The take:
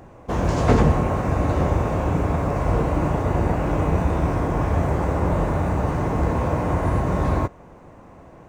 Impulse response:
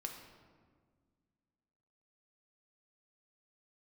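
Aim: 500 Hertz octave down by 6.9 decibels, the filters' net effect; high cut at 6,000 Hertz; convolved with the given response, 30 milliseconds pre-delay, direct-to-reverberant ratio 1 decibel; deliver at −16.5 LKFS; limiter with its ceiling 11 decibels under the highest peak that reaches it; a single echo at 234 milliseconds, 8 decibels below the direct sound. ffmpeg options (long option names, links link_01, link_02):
-filter_complex "[0:a]lowpass=6000,equalizer=frequency=500:width_type=o:gain=-9,alimiter=limit=-16.5dB:level=0:latency=1,aecho=1:1:234:0.398,asplit=2[link_01][link_02];[1:a]atrim=start_sample=2205,adelay=30[link_03];[link_02][link_03]afir=irnorm=-1:irlink=0,volume=1dB[link_04];[link_01][link_04]amix=inputs=2:normalize=0,volume=7dB"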